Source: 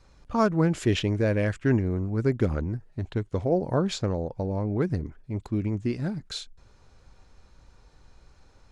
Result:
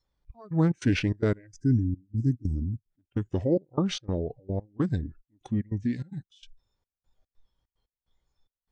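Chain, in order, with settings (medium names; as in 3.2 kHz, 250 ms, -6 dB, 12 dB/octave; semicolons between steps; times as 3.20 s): time-frequency box 1.47–2.91 s, 420–4900 Hz -19 dB; trance gate "xxx..xx.xxx.x..x" 147 bpm -24 dB; spectral noise reduction 22 dB; formant shift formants -3 st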